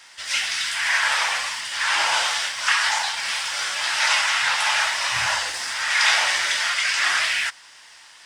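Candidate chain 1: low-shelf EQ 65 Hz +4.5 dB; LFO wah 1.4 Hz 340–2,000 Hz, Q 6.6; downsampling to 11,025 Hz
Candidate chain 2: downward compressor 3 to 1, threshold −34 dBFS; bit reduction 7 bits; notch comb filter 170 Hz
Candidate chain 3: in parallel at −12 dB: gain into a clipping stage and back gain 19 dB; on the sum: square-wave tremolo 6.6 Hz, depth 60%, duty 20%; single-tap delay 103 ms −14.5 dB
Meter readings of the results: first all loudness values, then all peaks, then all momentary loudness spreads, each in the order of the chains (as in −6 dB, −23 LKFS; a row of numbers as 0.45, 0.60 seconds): −32.0, −32.0, −23.5 LKFS; −13.5, −19.5, −3.0 dBFS; 16, 3, 6 LU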